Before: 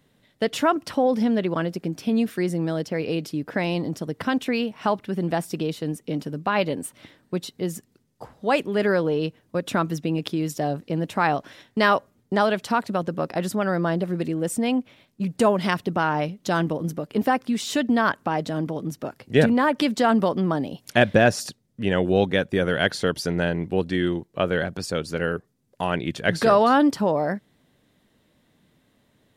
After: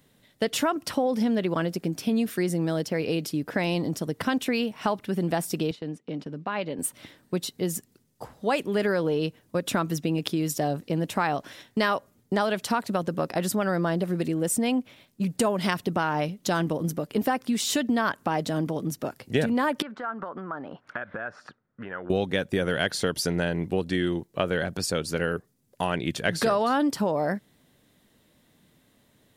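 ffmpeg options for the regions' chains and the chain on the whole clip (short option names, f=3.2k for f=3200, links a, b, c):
-filter_complex "[0:a]asettb=1/sr,asplit=3[a][b][c];[a]atrim=end=5.714[d];[b]atrim=start=5.71:end=6.79,asetpts=PTS-STARTPTS,afade=t=in:d=0.004:c=qsin,afade=t=out:st=1.076:d=0.004:c=qsin,acompressor=threshold=-38dB:ratio=1.5:attack=3.2:release=140:knee=1:detection=peak,highpass=120,lowpass=3.7k,agate=range=-10dB:threshold=-45dB:ratio=16:release=100:detection=peak[e];[c]atrim=start=6.786[f];[d][e]acrossfade=d=0.004:c1=hsin:c2=qsin[g];[g][f]acrossfade=d=0.004:c1=qsin:c2=hsin,asettb=1/sr,asplit=3[h][i][j];[h]atrim=end=19.824[k];[i]atrim=start=19.82:end=22.1,asetpts=PTS-STARTPTS,afade=t=in:d=0.004:c=qsin,afade=t=out:st=2.276:d=0.004:c=qsin,lowshelf=f=340:g=-11,acompressor=threshold=-33dB:ratio=12:attack=3.2:release=140:knee=1:detection=peak,lowpass=f=1.4k:t=q:w=4.4[l];[j]atrim=start=22.096[m];[k][l]acrossfade=d=0.004:c1=hsin:c2=qsin[n];[n][m]acrossfade=d=0.004:c1=qsin:c2=hsin,highshelf=f=6.2k:g=8.5,acompressor=threshold=-21dB:ratio=4"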